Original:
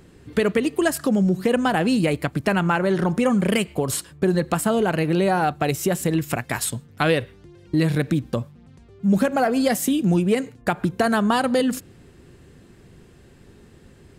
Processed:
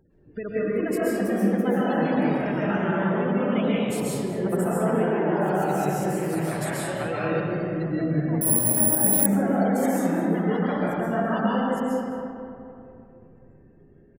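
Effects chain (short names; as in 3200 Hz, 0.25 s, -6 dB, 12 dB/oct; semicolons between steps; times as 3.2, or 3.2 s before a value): 1.01–1.53 sine-wave speech; spectral gate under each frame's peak -20 dB strong; echoes that change speed 0.425 s, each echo +2 st, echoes 2, each echo -6 dB; on a send: echo 0.21 s -15 dB; on the sum: digital reverb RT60 2.8 s, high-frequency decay 0.45×, pre-delay 95 ms, DRR -8 dB; 8.41–9.26 careless resampling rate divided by 4×, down none, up zero stuff; gain -13 dB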